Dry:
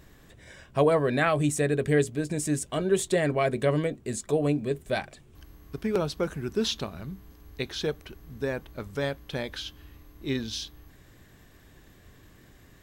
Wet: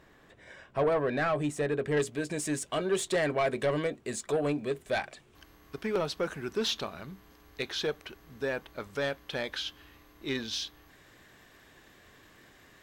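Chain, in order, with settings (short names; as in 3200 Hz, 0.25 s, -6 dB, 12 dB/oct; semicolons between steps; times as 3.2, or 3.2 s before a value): overdrive pedal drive 17 dB, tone 1400 Hz, clips at -10.5 dBFS, from 1.97 s tone 4300 Hz; gain -7.5 dB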